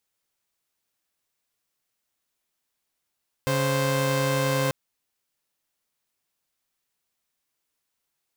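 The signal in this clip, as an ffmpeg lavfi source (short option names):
-f lavfi -i "aevalsrc='0.0794*((2*mod(138.59*t,1)-1)+(2*mod(523.25*t,1)-1))':d=1.24:s=44100"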